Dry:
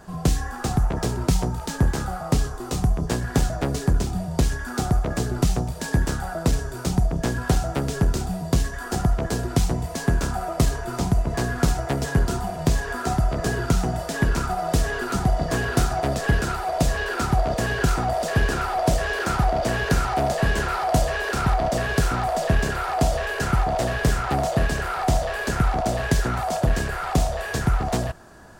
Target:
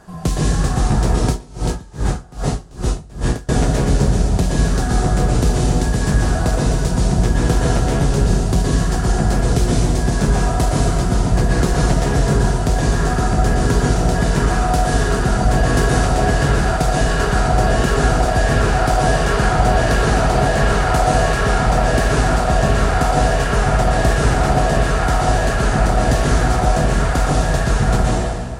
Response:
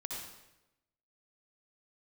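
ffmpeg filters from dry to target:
-filter_complex "[1:a]atrim=start_sample=2205,asetrate=22491,aresample=44100[a];[0:a][a]afir=irnorm=-1:irlink=0,asettb=1/sr,asplit=3[b][c][d];[b]atrim=end=1.284[e];[c]atrim=start=1.28:end=3.49,asetpts=PTS-STARTPTS,afade=t=in:d=0.004:c=qsin,afade=t=out:st=2.206:d=0.004:c=qsin,aeval=exprs='val(0)*pow(10,-26*(0.5-0.5*cos(2*PI*2.5*n/s))/20)':c=same[f];[d]atrim=start=3.486[g];[e][f]acrossfade=d=0.004:c1=hsin:c2=qsin[h];[h][g]acrossfade=d=0.004:c1=qsin:c2=hsin,volume=1.5dB"

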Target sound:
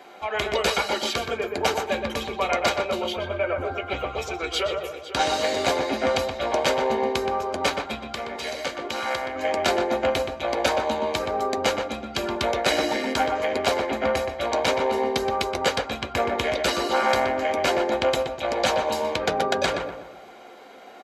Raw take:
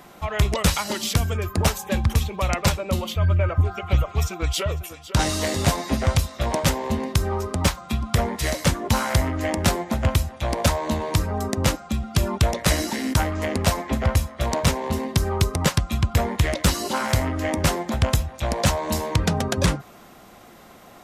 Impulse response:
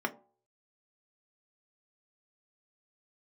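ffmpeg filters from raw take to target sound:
-filter_complex "[0:a]asettb=1/sr,asplit=3[a][b][c];[a]atrim=end=8.004[d];[b]atrim=start=8:end=9.36,asetpts=PTS-STARTPTS,afade=t=in:d=0.004:c=qsin,afade=t=out:st=1.356:d=0.004:c=qsin,acrossover=split=1800|5500[e][f][g];[e]acompressor=threshold=-29dB:ratio=4[h];[f]acompressor=threshold=-33dB:ratio=4[i];[g]acompressor=threshold=-38dB:ratio=4[j];[h][i][j]amix=inputs=3:normalize=0[k];[c]atrim=start=9.356[l];[d][k]acrossfade=d=0.004:c1=hsin:c2=qsin[m];[m][l]acrossfade=d=0.004:c1=qsin:c2=hsin,asplit=2[n][o];[o]adelay=123,lowpass=f=1.7k:p=1,volume=-3.5dB,asplit=2[p][q];[q]adelay=123,lowpass=f=1.7k:p=1,volume=0.46,asplit=2[r][s];[s]adelay=123,lowpass=f=1.7k:p=1,volume=0.46,asplit=2[t][u];[u]adelay=123,lowpass=f=1.7k:p=1,volume=0.46,asplit=2[v][w];[w]adelay=123,lowpass=f=1.7k:p=1,volume=0.46,asplit=2[x][y];[y]adelay=123,lowpass=f=1.7k:p=1,volume=0.46[z];[n][p][r][t][v][x][z]amix=inputs=7:normalize=0[aa];[1:a]atrim=start_sample=2205,asetrate=88200,aresample=44100[ab];[aa][ab]afir=irnorm=-1:irlink=0"

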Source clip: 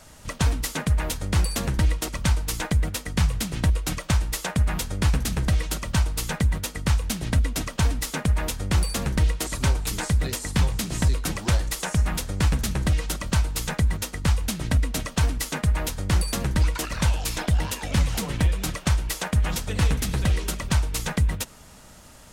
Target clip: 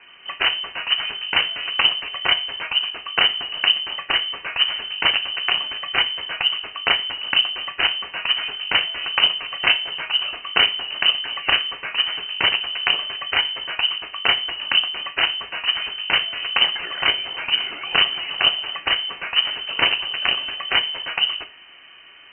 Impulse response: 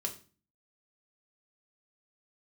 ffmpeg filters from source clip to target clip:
-filter_complex "[0:a]aeval=exprs='0.316*(cos(1*acos(clip(val(0)/0.316,-1,1)))-cos(1*PI/2))+0.0141*(cos(2*acos(clip(val(0)/0.316,-1,1)))-cos(2*PI/2))+0.141*(cos(3*acos(clip(val(0)/0.316,-1,1)))-cos(3*PI/2))':c=same,asplit=2[a][b];[1:a]atrim=start_sample=2205,lowshelf=f=170:g=-12[c];[b][c]afir=irnorm=-1:irlink=0,volume=1dB[d];[a][d]amix=inputs=2:normalize=0,lowpass=f=2.6k:t=q:w=0.5098,lowpass=f=2.6k:t=q:w=0.6013,lowpass=f=2.6k:t=q:w=0.9,lowpass=f=2.6k:t=q:w=2.563,afreqshift=-3100,volume=8dB"

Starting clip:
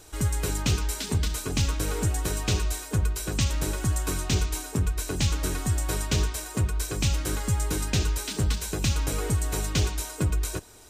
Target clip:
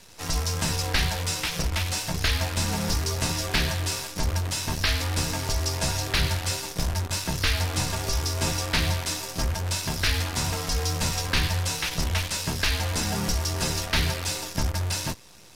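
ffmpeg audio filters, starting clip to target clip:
-af "bass=f=250:g=-8,treble=f=4k:g=-1,afreqshift=-180,acrusher=bits=7:dc=4:mix=0:aa=0.000001,asetrate=30870,aresample=44100,volume=5dB"

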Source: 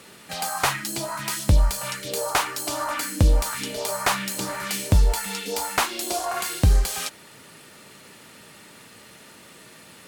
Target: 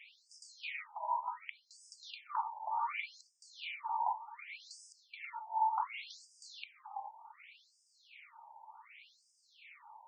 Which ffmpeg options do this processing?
-filter_complex "[0:a]acompressor=threshold=-28dB:ratio=6,asplit=3[a][b][c];[a]bandpass=f=300:t=q:w=8,volume=0dB[d];[b]bandpass=f=870:t=q:w=8,volume=-6dB[e];[c]bandpass=f=2.24k:t=q:w=8,volume=-9dB[f];[d][e][f]amix=inputs=3:normalize=0,afftfilt=real='re*between(b*sr/1024,740*pow(6900/740,0.5+0.5*sin(2*PI*0.67*pts/sr))/1.41,740*pow(6900/740,0.5+0.5*sin(2*PI*0.67*pts/sr))*1.41)':imag='im*between(b*sr/1024,740*pow(6900/740,0.5+0.5*sin(2*PI*0.67*pts/sr))/1.41,740*pow(6900/740,0.5+0.5*sin(2*PI*0.67*pts/sr))*1.41)':win_size=1024:overlap=0.75,volume=13.5dB"

